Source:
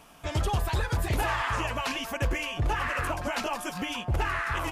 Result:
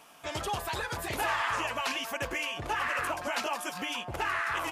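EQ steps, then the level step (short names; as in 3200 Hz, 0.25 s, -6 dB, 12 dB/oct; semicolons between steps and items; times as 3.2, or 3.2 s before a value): HPF 470 Hz 6 dB/oct; 0.0 dB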